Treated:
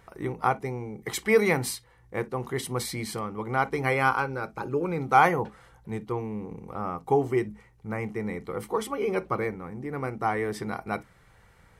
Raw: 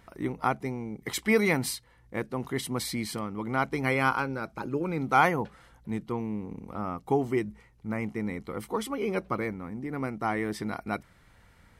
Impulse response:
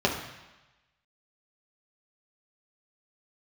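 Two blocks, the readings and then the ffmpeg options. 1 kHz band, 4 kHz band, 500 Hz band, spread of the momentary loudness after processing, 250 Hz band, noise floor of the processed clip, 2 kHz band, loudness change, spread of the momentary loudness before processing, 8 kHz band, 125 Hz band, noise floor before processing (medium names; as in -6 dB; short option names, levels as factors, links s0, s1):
+3.5 dB, -0.5 dB, +3.5 dB, 13 LU, -1.5 dB, -58 dBFS, +1.5 dB, +2.0 dB, 12 LU, +1.0 dB, +1.5 dB, -60 dBFS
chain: -filter_complex "[0:a]asplit=2[s0][s1];[s1]equalizer=f=270:t=o:w=1.8:g=4.5[s2];[1:a]atrim=start_sample=2205,afade=t=out:st=0.18:d=0.01,atrim=end_sample=8379,asetrate=88200,aresample=44100[s3];[s2][s3]afir=irnorm=-1:irlink=0,volume=0.126[s4];[s0][s4]amix=inputs=2:normalize=0"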